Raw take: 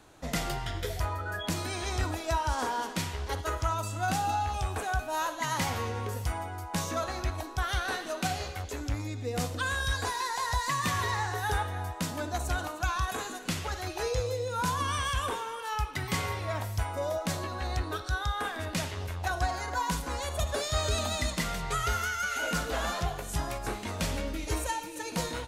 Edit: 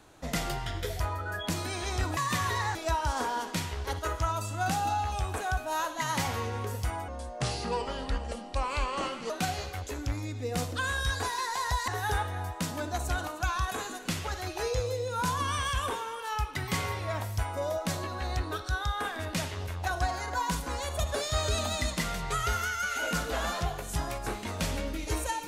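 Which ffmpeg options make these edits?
ffmpeg -i in.wav -filter_complex "[0:a]asplit=6[link_01][link_02][link_03][link_04][link_05][link_06];[link_01]atrim=end=2.172[link_07];[link_02]atrim=start=10.698:end=11.282[link_08];[link_03]atrim=start=2.168:end=6.504[link_09];[link_04]atrim=start=6.5:end=8.12,asetpts=PTS-STARTPTS,asetrate=32193,aresample=44100[link_10];[link_05]atrim=start=8.116:end=10.702[link_11];[link_06]atrim=start=11.278[link_12];[link_07][link_08]acrossfade=duration=0.004:curve1=hsin:curve2=hsin[link_13];[link_13][link_09]acrossfade=duration=0.004:curve1=hsin:curve2=hsin[link_14];[link_14][link_10]acrossfade=duration=0.004:curve1=hsin:curve2=hsin[link_15];[link_15][link_11]acrossfade=duration=0.004:curve1=hsin:curve2=hsin[link_16];[link_16][link_12]acrossfade=duration=0.004:curve1=hsin:curve2=hsin" out.wav

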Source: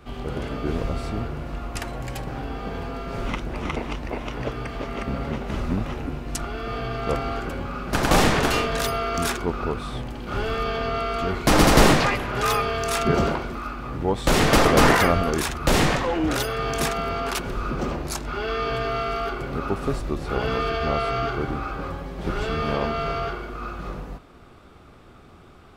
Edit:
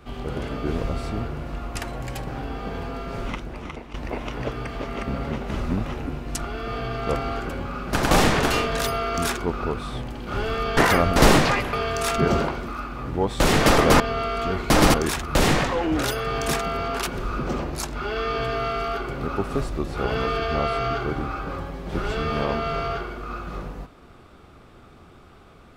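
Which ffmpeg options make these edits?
ffmpeg -i in.wav -filter_complex "[0:a]asplit=7[link_01][link_02][link_03][link_04][link_05][link_06][link_07];[link_01]atrim=end=3.94,asetpts=PTS-STARTPTS,afade=type=out:start_time=3.04:duration=0.9:silence=0.223872[link_08];[link_02]atrim=start=3.94:end=10.772,asetpts=PTS-STARTPTS,afade=type=in:duration=0.004:curve=hsin:silence=0.223872[link_09];[link_03]atrim=start=14.868:end=15.262[link_10];[link_04]atrim=start=11.708:end=12.282[link_11];[link_05]atrim=start=12.598:end=14.872[link_12];[link_06]atrim=start=10.768:end=11.712[link_13];[link_07]atrim=start=15.258[link_14];[link_08][link_09]concat=n=2:v=0:a=1[link_15];[link_15][link_10]acrossfade=duration=0.004:curve1=hsin:curve2=hsin[link_16];[link_16][link_11]acrossfade=duration=0.004:curve1=hsin:curve2=hsin[link_17];[link_17][link_12]acrossfade=duration=0.004:curve1=hsin:curve2=hsin[link_18];[link_18][link_13]acrossfade=duration=0.004:curve1=hsin:curve2=hsin[link_19];[link_19][link_14]acrossfade=duration=0.004:curve1=hsin:curve2=hsin" out.wav

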